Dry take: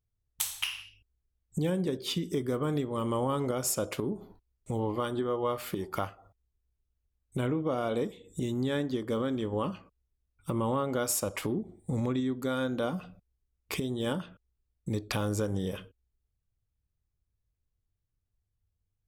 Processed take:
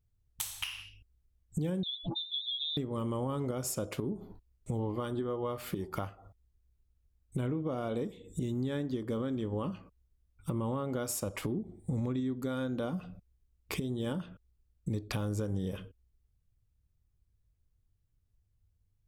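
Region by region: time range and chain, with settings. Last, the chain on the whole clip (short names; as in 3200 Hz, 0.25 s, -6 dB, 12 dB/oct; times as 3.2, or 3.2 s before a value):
1.83–2.77 spectral contrast raised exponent 3.9 + inverted band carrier 3800 Hz + Doppler distortion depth 0.39 ms
whole clip: low shelf 330 Hz +8 dB; compressor 2:1, threshold -37 dBFS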